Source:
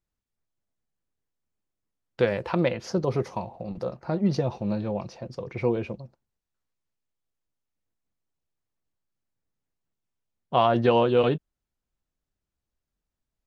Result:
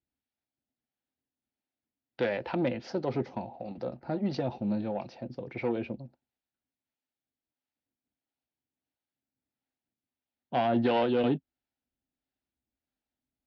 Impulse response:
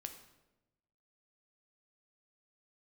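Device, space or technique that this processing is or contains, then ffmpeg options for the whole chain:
guitar amplifier with harmonic tremolo: -filter_complex "[0:a]acrossover=split=450[s0][s1];[s0]aeval=exprs='val(0)*(1-0.5/2+0.5/2*cos(2*PI*1.5*n/s))':c=same[s2];[s1]aeval=exprs='val(0)*(1-0.5/2-0.5/2*cos(2*PI*1.5*n/s))':c=same[s3];[s2][s3]amix=inputs=2:normalize=0,asoftclip=type=tanh:threshold=0.106,highpass=80,equalizer=f=98:t=q:w=4:g=-7,equalizer=f=170:t=q:w=4:g=-7,equalizer=f=260:t=q:w=4:g=9,equalizer=f=450:t=q:w=4:g=-4,equalizer=f=790:t=q:w=4:g=4,equalizer=f=1100:t=q:w=4:g=-9,lowpass=f=4500:w=0.5412,lowpass=f=4500:w=1.3066"

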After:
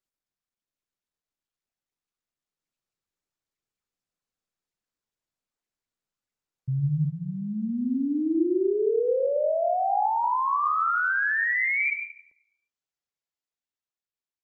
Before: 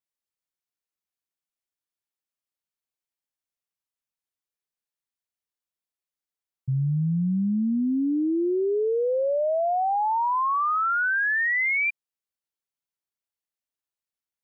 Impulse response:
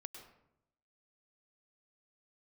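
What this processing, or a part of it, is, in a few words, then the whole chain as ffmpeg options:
speakerphone in a meeting room: -filter_complex "[0:a]asplit=3[s0][s1][s2];[s0]afade=t=out:st=7.04:d=0.02[s3];[s1]equalizer=f=160:t=o:w=0.67:g=-12,equalizer=f=630:t=o:w=0.67:g=10,equalizer=f=1600:t=o:w=0.67:g=9,afade=t=in:st=7.04:d=0.02,afade=t=out:st=8.36:d=0.02[s4];[s2]afade=t=in:st=8.36:d=0.02[s5];[s3][s4][s5]amix=inputs=3:normalize=0[s6];[1:a]atrim=start_sample=2205[s7];[s6][s7]afir=irnorm=-1:irlink=0,dynaudnorm=f=210:g=11:m=1.58" -ar 48000 -c:a libopus -b:a 24k

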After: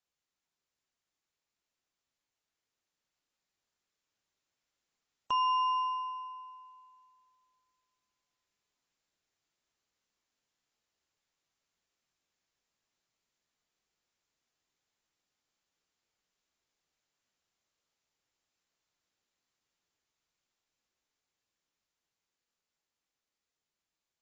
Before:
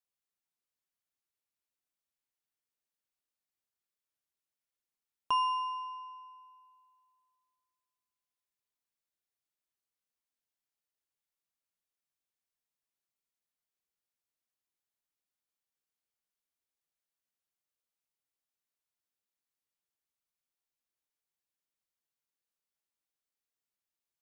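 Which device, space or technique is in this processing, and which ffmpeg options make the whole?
low-bitrate web radio: -af "dynaudnorm=f=570:g=13:m=1.58,alimiter=level_in=1.5:limit=0.0631:level=0:latency=1:release=363,volume=0.668,volume=1.68" -ar 22050 -c:a aac -b:a 24k

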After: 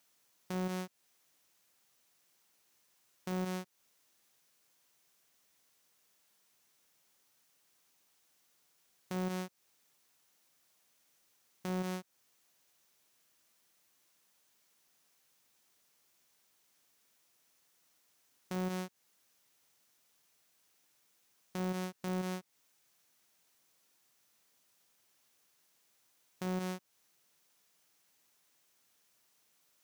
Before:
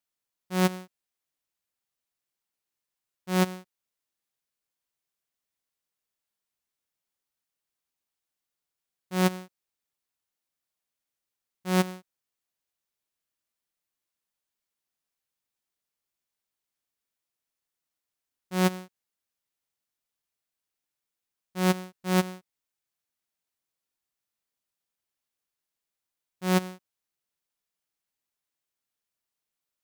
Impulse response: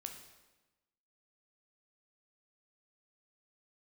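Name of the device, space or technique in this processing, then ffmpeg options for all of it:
broadcast voice chain: -af "highpass=110,deesser=0.65,acompressor=threshold=0.00794:ratio=3,equalizer=f=6000:t=o:w=0.29:g=3.5,alimiter=level_in=7.08:limit=0.0631:level=0:latency=1:release=26,volume=0.141,volume=5.31"

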